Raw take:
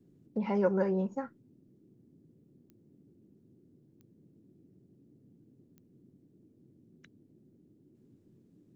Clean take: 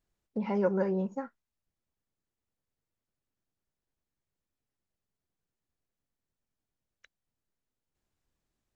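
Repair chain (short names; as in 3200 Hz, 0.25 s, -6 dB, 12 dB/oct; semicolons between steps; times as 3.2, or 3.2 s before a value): de-click; noise print and reduce 24 dB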